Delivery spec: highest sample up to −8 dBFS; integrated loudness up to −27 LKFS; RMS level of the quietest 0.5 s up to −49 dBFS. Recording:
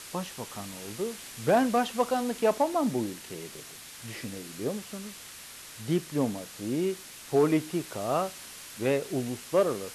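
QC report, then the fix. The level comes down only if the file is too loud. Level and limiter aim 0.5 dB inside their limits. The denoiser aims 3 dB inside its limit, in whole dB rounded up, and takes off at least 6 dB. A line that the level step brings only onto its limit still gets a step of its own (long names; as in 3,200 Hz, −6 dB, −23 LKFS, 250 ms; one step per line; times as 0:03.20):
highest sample −11.5 dBFS: in spec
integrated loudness −29.5 LKFS: in spec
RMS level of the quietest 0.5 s −46 dBFS: out of spec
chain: broadband denoise 6 dB, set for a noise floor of −46 dBFS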